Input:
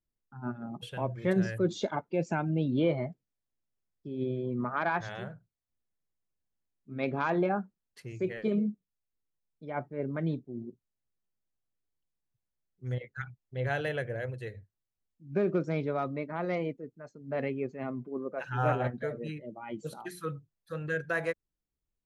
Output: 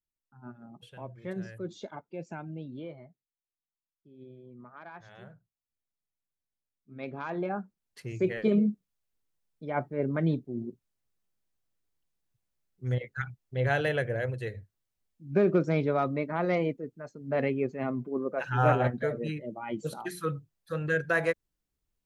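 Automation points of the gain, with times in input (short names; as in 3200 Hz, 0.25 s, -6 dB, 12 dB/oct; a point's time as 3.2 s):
2.48 s -9.5 dB
3.03 s -17 dB
4.92 s -17 dB
5.33 s -7 dB
7.25 s -7 dB
8.1 s +4.5 dB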